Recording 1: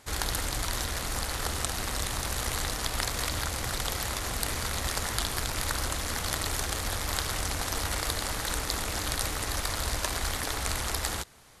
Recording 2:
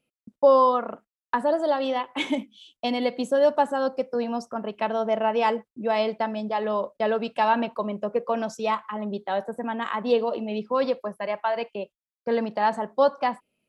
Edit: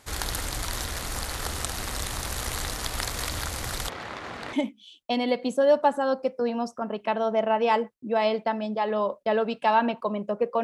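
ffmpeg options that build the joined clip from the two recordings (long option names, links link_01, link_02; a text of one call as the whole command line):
ffmpeg -i cue0.wav -i cue1.wav -filter_complex "[0:a]asplit=3[link_01][link_02][link_03];[link_01]afade=type=out:start_time=3.88:duration=0.02[link_04];[link_02]highpass=170,lowpass=2500,afade=type=in:start_time=3.88:duration=0.02,afade=type=out:start_time=4.53:duration=0.02[link_05];[link_03]afade=type=in:start_time=4.53:duration=0.02[link_06];[link_04][link_05][link_06]amix=inputs=3:normalize=0,apad=whole_dur=10.63,atrim=end=10.63,atrim=end=4.532[link_07];[1:a]atrim=start=2.268:end=8.37[link_08];[link_07][link_08]acrossfade=duration=0.004:curve1=hsin:curve2=hsin" out.wav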